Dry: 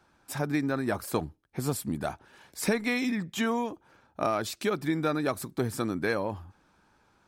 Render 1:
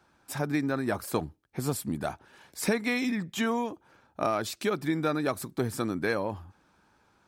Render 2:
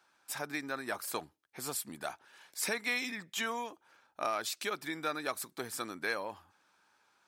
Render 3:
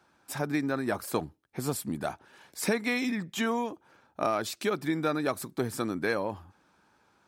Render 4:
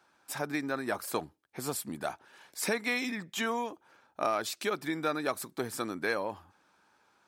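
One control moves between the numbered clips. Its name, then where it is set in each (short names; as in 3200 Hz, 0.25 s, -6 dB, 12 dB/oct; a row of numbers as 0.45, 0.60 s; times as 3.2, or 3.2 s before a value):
HPF, cutoff: 40, 1400, 150, 530 Hz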